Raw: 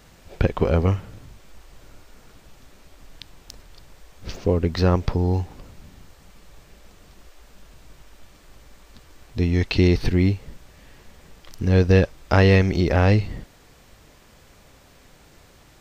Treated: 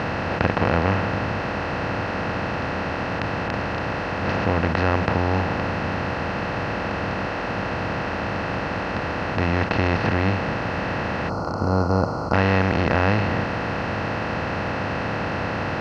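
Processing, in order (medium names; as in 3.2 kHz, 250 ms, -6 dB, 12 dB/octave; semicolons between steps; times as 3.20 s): spectral levelling over time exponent 0.2; high-pass 100 Hz 12 dB/octave; distance through air 110 m; hum notches 60/120/180 Hz; time-frequency box 11.29–12.33 s, 1.5–4.1 kHz -22 dB; fifteen-band graphic EQ 400 Hz -9 dB, 1 kHz +4 dB, 4 kHz -6 dB; trim -4.5 dB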